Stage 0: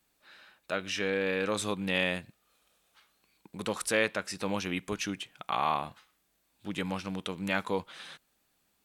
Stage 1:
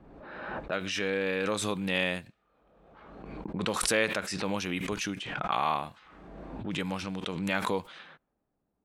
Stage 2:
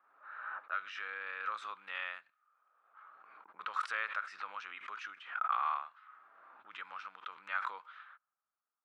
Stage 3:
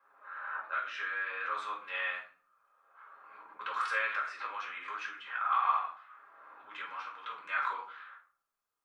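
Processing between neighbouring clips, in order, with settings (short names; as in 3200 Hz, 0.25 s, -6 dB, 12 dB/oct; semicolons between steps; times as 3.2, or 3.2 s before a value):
low-pass opened by the level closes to 630 Hz, open at -30 dBFS; backwards sustainer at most 36 dB/s
ladder band-pass 1400 Hz, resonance 70%; gain +2.5 dB
reverb RT60 0.50 s, pre-delay 4 ms, DRR -3.5 dB; gain -2 dB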